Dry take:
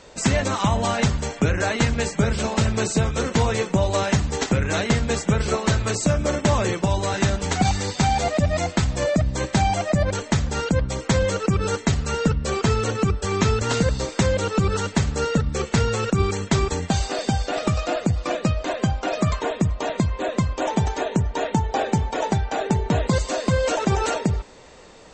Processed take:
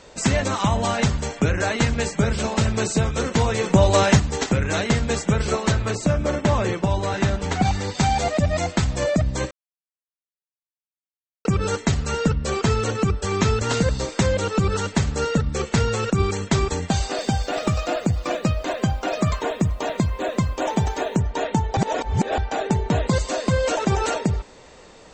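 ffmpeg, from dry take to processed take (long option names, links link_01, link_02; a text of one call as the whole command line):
ffmpeg -i in.wav -filter_complex "[0:a]asplit=3[link_01][link_02][link_03];[link_01]afade=type=out:start_time=3.63:duration=0.02[link_04];[link_02]acontrast=37,afade=type=in:start_time=3.63:duration=0.02,afade=type=out:start_time=4.18:duration=0.02[link_05];[link_03]afade=type=in:start_time=4.18:duration=0.02[link_06];[link_04][link_05][link_06]amix=inputs=3:normalize=0,asettb=1/sr,asplit=3[link_07][link_08][link_09];[link_07]atrim=end=5.724[link_10];[link_08]atrim=start=5.72:end=7.95,asetpts=PTS-STARTPTS,afade=type=in:duration=0.004:curve=qsin,afade=type=out:start_time=2.226:duration=0.004:curve=qsin,highshelf=frequency=5500:gain=-10.5[link_11];[link_09]atrim=start=7.946[link_12];[link_10][link_11]acrossfade=duration=0.004:curve1=hsin:curve2=qsin[link_13];[link_13][link_12]acrossfade=duration=0.004:curve1=qsin:curve2=hsin,asettb=1/sr,asplit=3[link_14][link_15][link_16];[link_14]atrim=end=17.194[link_17];[link_15]atrim=start=17.19:end=21.16,asetpts=PTS-STARTPTS,afade=type=in:duration=0.004:curve=qsin,afade=type=out:start_time=3.966:duration=0.004:curve=qsin,acrusher=bits=8:mix=0:aa=0.5[link_18];[link_16]atrim=start=21.156[link_19];[link_17][link_18]acrossfade=duration=0.004:curve1=hsin:curve2=qsin[link_20];[link_20][link_19]acrossfade=duration=0.004:curve1=qsin:curve2=hsin,asplit=5[link_21][link_22][link_23][link_24][link_25];[link_21]atrim=end=9.51,asetpts=PTS-STARTPTS,afade=type=out:start_time=9.506:duration=0.004:curve=hsin[link_26];[link_22]atrim=start=9.51:end=11.45,asetpts=PTS-STARTPTS,volume=0[link_27];[link_23]atrim=start=11.45:end=21.772,asetpts=PTS-STARTPTS,afade=type=in:duration=0.004:curve=hsin[link_28];[link_24]atrim=start=21.768:end=22.382,asetpts=PTS-STARTPTS,areverse[link_29];[link_25]atrim=start=22.378[link_30];[link_26][link_27][link_28]concat=n=3:v=0:a=1[link_31];[link_31][link_29]acrossfade=duration=0.004:curve1=hsin:curve2=hsin[link_32];[link_32][link_30]acrossfade=duration=0.004:curve1=hsin:curve2=hsin" out.wav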